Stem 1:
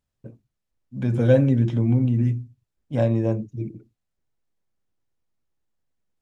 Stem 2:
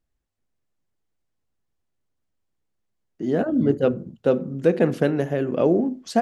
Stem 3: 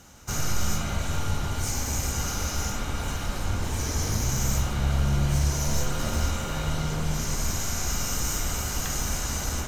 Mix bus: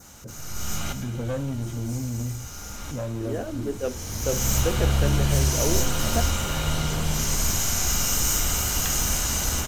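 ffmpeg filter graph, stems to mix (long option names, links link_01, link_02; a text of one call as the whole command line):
ffmpeg -i stem1.wav -i stem2.wav -i stem3.wav -filter_complex "[0:a]acompressor=threshold=-38dB:ratio=1.5,asoftclip=type=tanh:threshold=-24.5dB,volume=0.5dB,asplit=2[link_01][link_02];[1:a]highpass=310,volume=-7.5dB[link_03];[2:a]highshelf=frequency=6500:gain=8,volume=2dB,asplit=2[link_04][link_05];[link_05]volume=-16.5dB[link_06];[link_02]apad=whole_len=426796[link_07];[link_04][link_07]sidechaincompress=threshold=-54dB:ratio=4:attack=6:release=570[link_08];[link_06]aecho=0:1:262:1[link_09];[link_01][link_03][link_08][link_09]amix=inputs=4:normalize=0,adynamicequalizer=threshold=0.00447:dfrequency=3000:dqfactor=2.8:tfrequency=3000:tqfactor=2.8:attack=5:release=100:ratio=0.375:range=2:mode=boostabove:tftype=bell" out.wav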